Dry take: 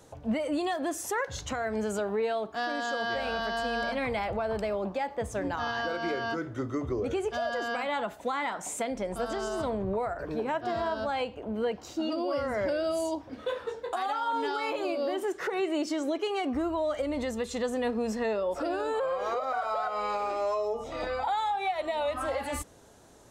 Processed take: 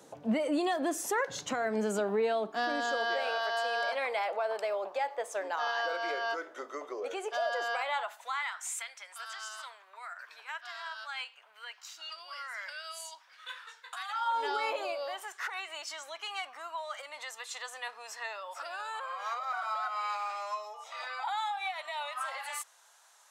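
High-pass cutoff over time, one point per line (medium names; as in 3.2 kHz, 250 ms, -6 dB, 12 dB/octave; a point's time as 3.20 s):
high-pass 24 dB/octave
2.45 s 160 Hz
3.40 s 500 Hz
7.61 s 500 Hz
8.59 s 1.3 kHz
14.08 s 1.3 kHz
14.53 s 390 Hz
15.33 s 940 Hz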